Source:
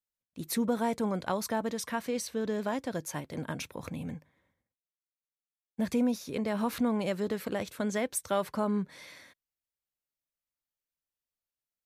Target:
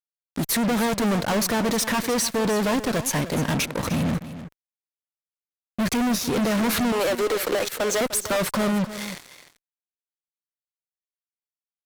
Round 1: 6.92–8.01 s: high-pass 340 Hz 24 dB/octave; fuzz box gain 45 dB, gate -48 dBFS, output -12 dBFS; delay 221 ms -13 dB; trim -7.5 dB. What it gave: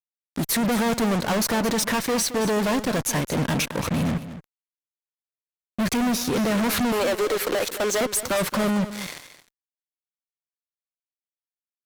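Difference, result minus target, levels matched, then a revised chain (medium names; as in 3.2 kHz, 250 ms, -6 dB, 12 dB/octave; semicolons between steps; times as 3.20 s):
echo 81 ms early
6.92–8.01 s: high-pass 340 Hz 24 dB/octave; fuzz box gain 45 dB, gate -48 dBFS, output -12 dBFS; delay 302 ms -13 dB; trim -7.5 dB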